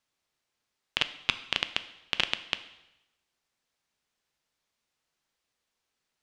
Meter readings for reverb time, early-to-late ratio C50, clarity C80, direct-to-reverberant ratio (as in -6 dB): 0.95 s, 14.0 dB, 16.5 dB, 11.0 dB